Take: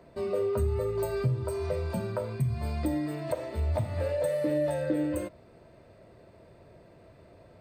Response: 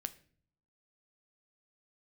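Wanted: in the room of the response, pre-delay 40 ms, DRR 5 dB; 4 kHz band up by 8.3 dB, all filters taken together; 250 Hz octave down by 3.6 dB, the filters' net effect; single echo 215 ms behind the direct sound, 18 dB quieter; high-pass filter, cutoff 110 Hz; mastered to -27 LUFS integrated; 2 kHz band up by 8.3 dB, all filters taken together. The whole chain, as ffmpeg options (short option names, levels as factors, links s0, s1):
-filter_complex "[0:a]highpass=110,equalizer=f=250:t=o:g=-5,equalizer=f=2000:t=o:g=8.5,equalizer=f=4000:t=o:g=7.5,aecho=1:1:215:0.126,asplit=2[s0][s1];[1:a]atrim=start_sample=2205,adelay=40[s2];[s1][s2]afir=irnorm=-1:irlink=0,volume=0.708[s3];[s0][s3]amix=inputs=2:normalize=0,volume=1.33"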